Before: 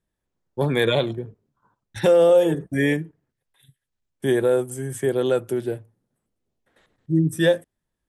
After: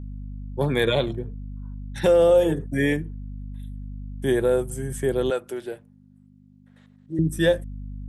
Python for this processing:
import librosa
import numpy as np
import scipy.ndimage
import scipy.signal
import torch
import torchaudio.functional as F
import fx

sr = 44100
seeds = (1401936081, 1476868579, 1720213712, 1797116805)

y = fx.add_hum(x, sr, base_hz=50, snr_db=10)
y = fx.weighting(y, sr, curve='A', at=(5.3, 7.19))
y = y * 10.0 ** (-1.5 / 20.0)